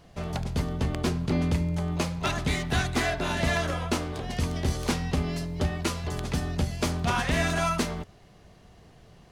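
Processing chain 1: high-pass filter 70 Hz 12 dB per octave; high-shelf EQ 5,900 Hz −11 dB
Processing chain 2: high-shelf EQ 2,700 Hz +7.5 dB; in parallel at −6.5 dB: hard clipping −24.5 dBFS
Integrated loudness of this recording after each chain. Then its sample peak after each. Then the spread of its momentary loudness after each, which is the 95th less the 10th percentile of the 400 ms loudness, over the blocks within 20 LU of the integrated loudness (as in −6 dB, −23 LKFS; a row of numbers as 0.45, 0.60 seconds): −29.5, −24.5 LKFS; −14.0, −10.5 dBFS; 6, 6 LU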